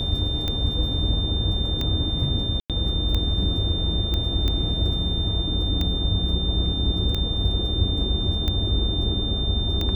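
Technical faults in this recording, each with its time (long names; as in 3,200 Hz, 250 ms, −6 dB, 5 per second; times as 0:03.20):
scratch tick 45 rpm −13 dBFS
whistle 3,600 Hz −27 dBFS
0:02.60–0:02.70: drop-out 97 ms
0:04.14: click −14 dBFS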